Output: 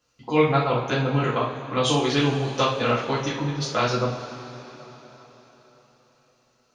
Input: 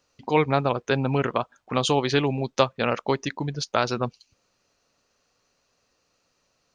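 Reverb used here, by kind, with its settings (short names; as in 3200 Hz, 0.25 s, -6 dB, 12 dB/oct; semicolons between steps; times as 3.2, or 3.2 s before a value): two-slope reverb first 0.43 s, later 4.3 s, from -18 dB, DRR -7.5 dB; gain -6.5 dB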